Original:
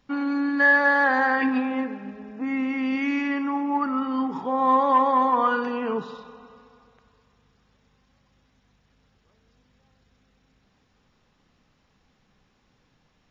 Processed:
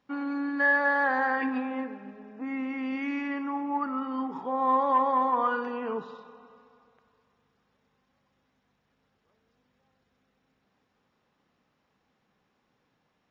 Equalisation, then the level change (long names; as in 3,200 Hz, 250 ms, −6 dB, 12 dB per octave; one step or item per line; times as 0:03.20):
high-pass filter 300 Hz 6 dB per octave
high-shelf EQ 2,700 Hz −9.5 dB
−3.0 dB